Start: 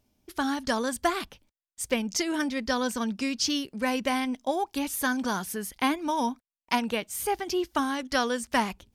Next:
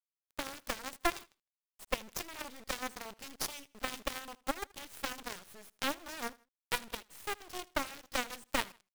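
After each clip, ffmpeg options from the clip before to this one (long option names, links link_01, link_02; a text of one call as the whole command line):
ffmpeg -i in.wav -af "acrusher=bits=3:dc=4:mix=0:aa=0.000001,aeval=exprs='0.299*(cos(1*acos(clip(val(0)/0.299,-1,1)))-cos(1*PI/2))+0.0168*(cos(5*acos(clip(val(0)/0.299,-1,1)))-cos(5*PI/2))+0.0531*(cos(6*acos(clip(val(0)/0.299,-1,1)))-cos(6*PI/2))+0.0841*(cos(7*acos(clip(val(0)/0.299,-1,1)))-cos(7*PI/2))+0.015*(cos(8*acos(clip(val(0)/0.299,-1,1)))-cos(8*PI/2))':channel_layout=same,aecho=1:1:79|158:0.0708|0.0255,volume=-6dB" out.wav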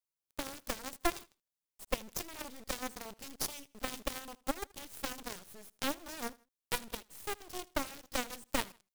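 ffmpeg -i in.wav -af "equalizer=frequency=1800:width=0.42:gain=-6,volume=2.5dB" out.wav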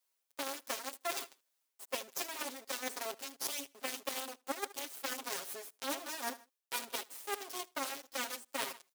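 ffmpeg -i in.wav -af "highpass=390,aecho=1:1:7.4:0.93,areverse,acompressor=threshold=-44dB:ratio=6,areverse,volume=8.5dB" out.wav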